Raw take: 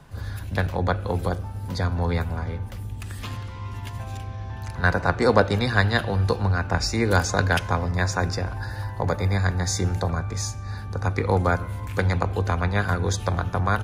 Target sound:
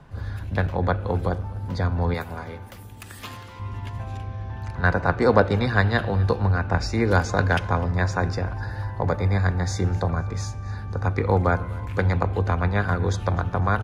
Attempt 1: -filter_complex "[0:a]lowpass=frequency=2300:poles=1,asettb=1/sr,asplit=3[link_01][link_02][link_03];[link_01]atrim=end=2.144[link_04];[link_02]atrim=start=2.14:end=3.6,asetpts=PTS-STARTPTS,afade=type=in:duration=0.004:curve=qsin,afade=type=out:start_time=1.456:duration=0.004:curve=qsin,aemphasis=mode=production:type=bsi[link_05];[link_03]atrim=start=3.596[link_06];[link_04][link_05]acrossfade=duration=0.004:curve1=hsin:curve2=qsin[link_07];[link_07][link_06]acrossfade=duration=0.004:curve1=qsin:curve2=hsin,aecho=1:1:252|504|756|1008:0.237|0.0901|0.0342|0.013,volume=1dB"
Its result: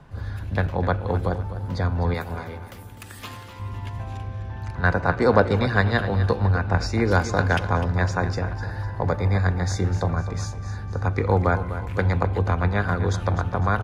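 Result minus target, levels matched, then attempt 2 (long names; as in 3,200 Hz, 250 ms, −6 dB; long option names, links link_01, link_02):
echo-to-direct +10 dB
-filter_complex "[0:a]lowpass=frequency=2300:poles=1,asettb=1/sr,asplit=3[link_01][link_02][link_03];[link_01]atrim=end=2.144[link_04];[link_02]atrim=start=2.14:end=3.6,asetpts=PTS-STARTPTS,afade=type=in:duration=0.004:curve=qsin,afade=type=out:start_time=1.456:duration=0.004:curve=qsin,aemphasis=mode=production:type=bsi[link_05];[link_03]atrim=start=3.596[link_06];[link_04][link_05]acrossfade=duration=0.004:curve1=hsin:curve2=qsin[link_07];[link_07][link_06]acrossfade=duration=0.004:curve1=qsin:curve2=hsin,aecho=1:1:252|504|756:0.075|0.0285|0.0108,volume=1dB"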